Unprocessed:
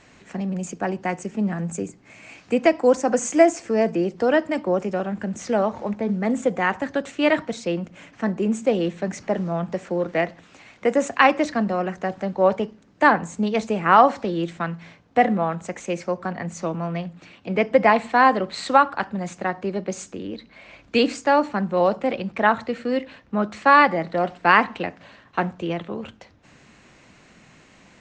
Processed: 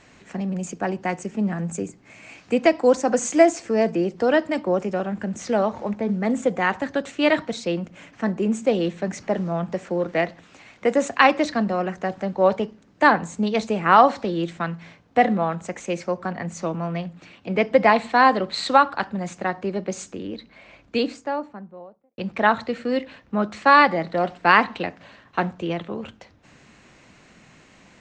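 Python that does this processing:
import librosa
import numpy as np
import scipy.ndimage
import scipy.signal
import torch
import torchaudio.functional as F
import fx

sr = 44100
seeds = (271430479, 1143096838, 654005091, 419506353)

y = fx.studio_fade_out(x, sr, start_s=20.22, length_s=1.96)
y = fx.dynamic_eq(y, sr, hz=4000.0, q=2.8, threshold_db=-46.0, ratio=4.0, max_db=6)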